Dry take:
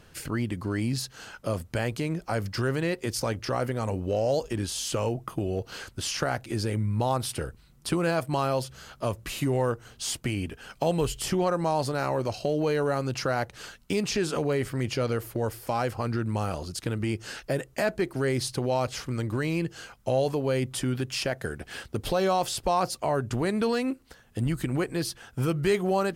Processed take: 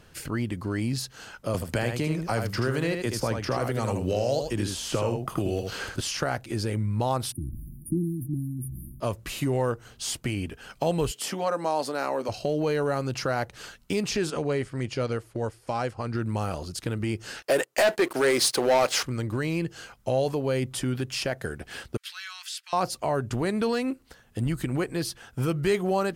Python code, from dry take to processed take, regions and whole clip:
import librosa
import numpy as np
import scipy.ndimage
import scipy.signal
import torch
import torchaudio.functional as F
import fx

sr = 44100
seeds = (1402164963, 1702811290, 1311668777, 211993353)

y = fx.chain(x, sr, fx.echo_single(ms=78, db=-6.0),
    fx.band_squash(depth_pct=70), at=(1.54, 6.01))
y = fx.chain(y, sr, fx.brickwall_bandstop(low_hz=350.0, high_hz=9400.0),
    fx.sustainer(db_per_s=34.0), at=(7.32, 9.0))
y = fx.chain(y, sr, fx.highpass(hz=220.0, slope=24),
    fx.notch(hz=360.0, q=7.2), at=(11.11, 12.29))
y = fx.chain(y, sr, fx.lowpass(hz=10000.0, slope=24),
    fx.upward_expand(threshold_db=-44.0, expansion=1.5), at=(14.3, 16.15))
y = fx.chain(y, sr, fx.highpass(hz=440.0, slope=12),
    fx.leveller(passes=3), at=(17.42, 19.03))
y = fx.chain(y, sr, fx.steep_highpass(hz=1500.0, slope=36),
    fx.high_shelf(hz=6600.0, db=-9.0), at=(21.97, 22.73))